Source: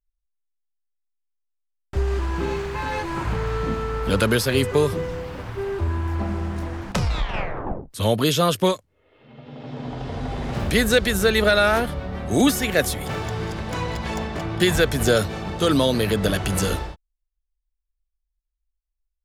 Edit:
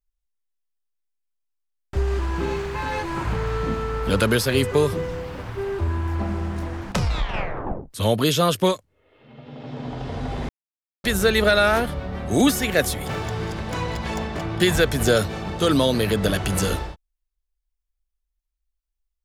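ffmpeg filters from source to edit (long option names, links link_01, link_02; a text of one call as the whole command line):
ffmpeg -i in.wav -filter_complex "[0:a]asplit=3[link_01][link_02][link_03];[link_01]atrim=end=10.49,asetpts=PTS-STARTPTS,afade=type=out:start_time=10.486:duration=0.004:curve=hsin[link_04];[link_02]atrim=start=10.49:end=11.04,asetpts=PTS-STARTPTS,volume=0[link_05];[link_03]atrim=start=11.04,asetpts=PTS-STARTPTS,afade=type=in:duration=0.004:curve=hsin[link_06];[link_04][link_05][link_06]concat=n=3:v=0:a=1" out.wav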